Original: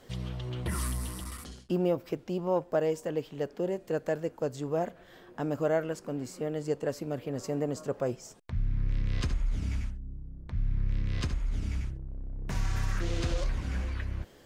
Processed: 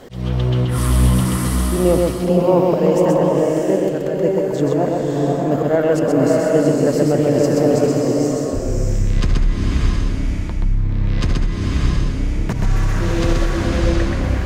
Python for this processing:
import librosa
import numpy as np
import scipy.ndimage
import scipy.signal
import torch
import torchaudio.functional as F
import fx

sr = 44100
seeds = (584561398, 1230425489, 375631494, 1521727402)

p1 = fx.tilt_shelf(x, sr, db=4.5, hz=970.0)
p2 = fx.auto_swell(p1, sr, attack_ms=192.0)
p3 = fx.over_compress(p2, sr, threshold_db=-30.0, ratio=-1.0)
p4 = p2 + (p3 * librosa.db_to_amplitude(-1.0))
p5 = fx.low_shelf(p4, sr, hz=220.0, db=-6.0)
p6 = p5 + fx.echo_single(p5, sr, ms=128, db=-3.0, dry=0)
p7 = fx.rev_bloom(p6, sr, seeds[0], attack_ms=640, drr_db=-1.0)
y = p7 * librosa.db_to_amplitude(8.5)